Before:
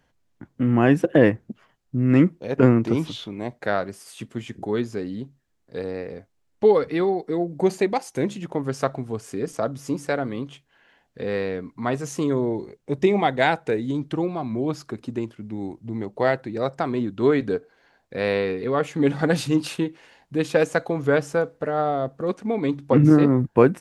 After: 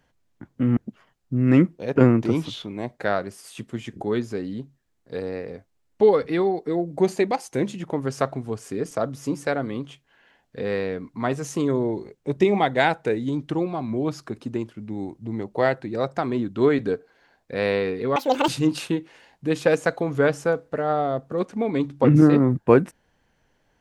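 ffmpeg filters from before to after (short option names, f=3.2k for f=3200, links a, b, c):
-filter_complex "[0:a]asplit=4[a][b][c][d];[a]atrim=end=0.772[e];[b]atrim=start=1.388:end=18.784[f];[c]atrim=start=18.78:end=19.37,asetpts=PTS-STARTPTS,asetrate=80703,aresample=44100,atrim=end_sample=14218,asetpts=PTS-STARTPTS[g];[d]atrim=start=19.366[h];[e][f]acrossfade=d=0.004:c1=hsin:c2=hsin[i];[i][g]acrossfade=d=0.004:c1=hsin:c2=hsin[j];[j][h]acrossfade=d=0.004:c1=hsin:c2=hsin"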